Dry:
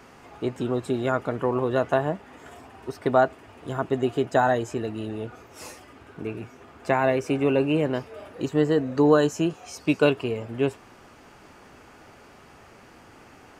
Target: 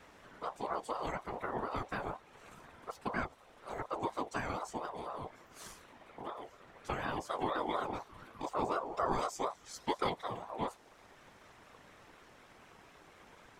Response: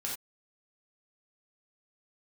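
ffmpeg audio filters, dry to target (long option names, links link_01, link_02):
-filter_complex "[0:a]afftfilt=real='hypot(re,im)*cos(2*PI*random(0))':imag='hypot(re,im)*sin(2*PI*random(1))':win_size=512:overlap=0.75,acrossover=split=240|3000[link_01][link_02][link_03];[link_02]acompressor=threshold=-55dB:ratio=1.5[link_04];[link_01][link_04][link_03]amix=inputs=3:normalize=0,aeval=exprs='val(0)*sin(2*PI*740*n/s+740*0.25/4.1*sin(2*PI*4.1*n/s))':channel_layout=same,volume=1dB"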